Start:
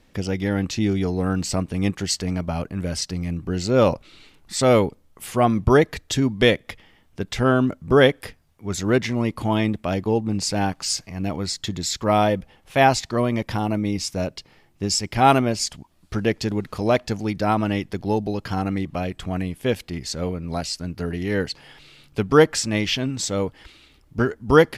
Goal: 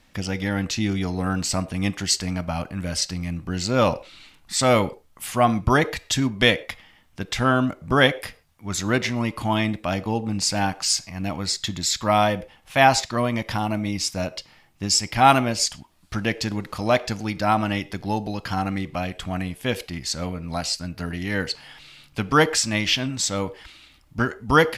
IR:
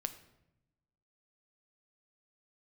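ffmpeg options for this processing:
-filter_complex "[0:a]asplit=2[s0][s1];[s1]highpass=f=400:w=0.5412,highpass=f=400:w=1.3066[s2];[1:a]atrim=start_sample=2205,atrim=end_sample=6174[s3];[s2][s3]afir=irnorm=-1:irlink=0,volume=0.891[s4];[s0][s4]amix=inputs=2:normalize=0,volume=0.794"

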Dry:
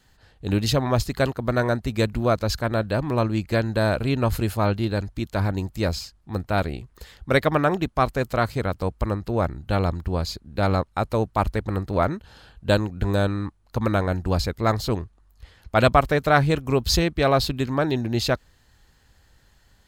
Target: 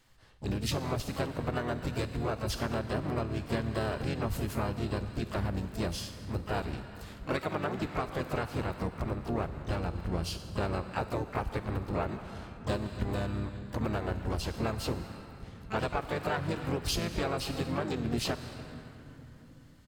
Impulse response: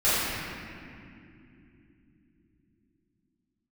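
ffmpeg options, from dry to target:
-filter_complex "[0:a]asplit=2[s0][s1];[1:a]atrim=start_sample=2205,asetrate=35721,aresample=44100,highshelf=f=2500:g=11.5[s2];[s1][s2]afir=irnorm=-1:irlink=0,volume=0.0237[s3];[s0][s3]amix=inputs=2:normalize=0,acompressor=threshold=0.0794:ratio=20,asplit=4[s4][s5][s6][s7];[s5]asetrate=29433,aresample=44100,atempo=1.49831,volume=0.708[s8];[s6]asetrate=52444,aresample=44100,atempo=0.840896,volume=0.501[s9];[s7]asetrate=88200,aresample=44100,atempo=0.5,volume=0.355[s10];[s4][s8][s9][s10]amix=inputs=4:normalize=0,volume=0.398"

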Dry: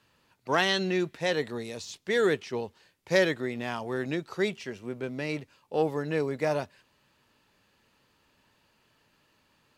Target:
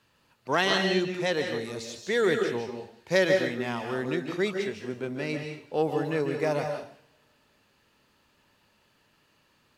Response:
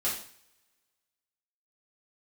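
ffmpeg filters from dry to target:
-filter_complex "[0:a]asplit=2[s0][s1];[1:a]atrim=start_sample=2205,adelay=141[s2];[s1][s2]afir=irnorm=-1:irlink=0,volume=0.299[s3];[s0][s3]amix=inputs=2:normalize=0"

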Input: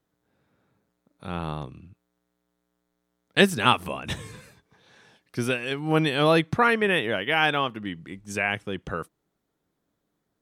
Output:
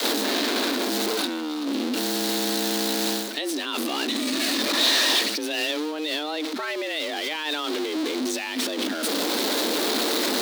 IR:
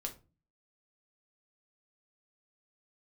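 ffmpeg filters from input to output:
-af "aeval=exprs='val(0)+0.5*0.0668*sgn(val(0))':c=same,adynamicequalizer=threshold=0.0112:dfrequency=120:dqfactor=1.2:tfrequency=120:tqfactor=1.2:attack=5:release=100:ratio=0.375:range=3.5:mode=boostabove:tftype=bell,areverse,acompressor=threshold=0.0355:ratio=5,areverse,alimiter=level_in=1.88:limit=0.0631:level=0:latency=1:release=49,volume=0.531,highpass=f=50:w=0.5412,highpass=f=50:w=1.3066,equalizer=f=3900:w=1.5:g=12,afreqshift=150,volume=2.11"

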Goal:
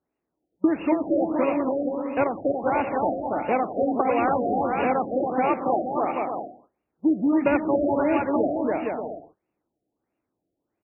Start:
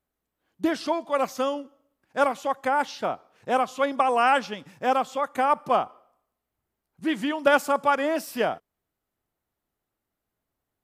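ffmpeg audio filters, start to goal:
-filter_complex "[0:a]aeval=exprs='val(0)+0.5*0.0266*sgn(val(0))':c=same,asplit=2[s0][s1];[s1]acrusher=samples=29:mix=1:aa=0.000001,volume=0.708[s2];[s0][s2]amix=inputs=2:normalize=0,highpass=f=220:p=1,agate=range=0.00562:threshold=0.0282:ratio=16:detection=peak,equalizer=f=310:w=3.4:g=7,asplit=2[s3][s4];[s4]aecho=0:1:280|462|580.3|657.2|707.2:0.631|0.398|0.251|0.158|0.1[s5];[s3][s5]amix=inputs=2:normalize=0,acompressor=threshold=0.112:ratio=2.5,highshelf=f=3100:t=q:w=1.5:g=13.5,afftfilt=real='re*lt(b*sr/1024,740*pow(2900/740,0.5+0.5*sin(2*PI*1.5*pts/sr)))':imag='im*lt(b*sr/1024,740*pow(2900/740,0.5+0.5*sin(2*PI*1.5*pts/sr)))':win_size=1024:overlap=0.75"

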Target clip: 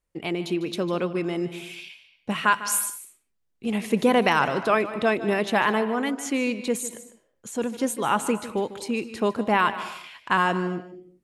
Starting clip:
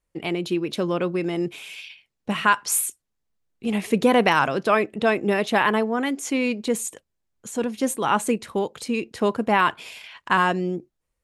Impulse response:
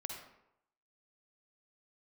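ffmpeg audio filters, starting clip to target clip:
-filter_complex "[0:a]asplit=2[s0][s1];[1:a]atrim=start_sample=2205,afade=t=out:st=0.34:d=0.01,atrim=end_sample=15435,adelay=150[s2];[s1][s2]afir=irnorm=-1:irlink=0,volume=0.282[s3];[s0][s3]amix=inputs=2:normalize=0,volume=0.794"

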